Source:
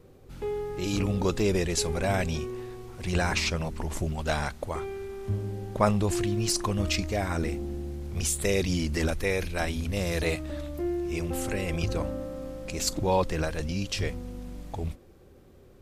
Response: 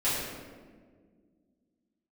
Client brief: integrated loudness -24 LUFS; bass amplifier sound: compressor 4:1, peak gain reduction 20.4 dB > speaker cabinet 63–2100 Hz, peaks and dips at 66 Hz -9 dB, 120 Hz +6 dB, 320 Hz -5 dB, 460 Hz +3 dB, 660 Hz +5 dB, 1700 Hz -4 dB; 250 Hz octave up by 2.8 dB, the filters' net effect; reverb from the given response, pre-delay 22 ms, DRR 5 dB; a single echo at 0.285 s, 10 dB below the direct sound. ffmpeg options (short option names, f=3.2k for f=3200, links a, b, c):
-filter_complex "[0:a]equalizer=f=250:t=o:g=5.5,aecho=1:1:285:0.316,asplit=2[a][b];[1:a]atrim=start_sample=2205,adelay=22[c];[b][c]afir=irnorm=-1:irlink=0,volume=-16dB[d];[a][d]amix=inputs=2:normalize=0,acompressor=threshold=-41dB:ratio=4,highpass=f=63:w=0.5412,highpass=f=63:w=1.3066,equalizer=f=66:t=q:w=4:g=-9,equalizer=f=120:t=q:w=4:g=6,equalizer=f=320:t=q:w=4:g=-5,equalizer=f=460:t=q:w=4:g=3,equalizer=f=660:t=q:w=4:g=5,equalizer=f=1.7k:t=q:w=4:g=-4,lowpass=f=2.1k:w=0.5412,lowpass=f=2.1k:w=1.3066,volume=18dB"